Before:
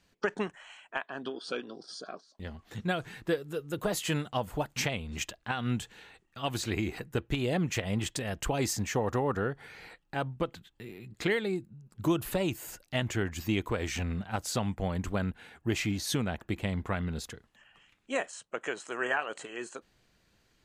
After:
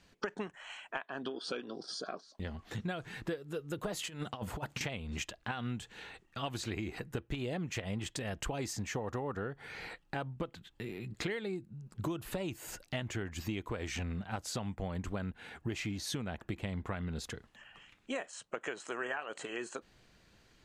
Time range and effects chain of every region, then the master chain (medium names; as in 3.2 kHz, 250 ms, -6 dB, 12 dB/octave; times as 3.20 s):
3.99–4.81 s: high-pass 68 Hz + compressor with a negative ratio -36 dBFS, ratio -0.5
whole clip: compression 4:1, threshold -41 dBFS; treble shelf 12 kHz -11 dB; trim +4.5 dB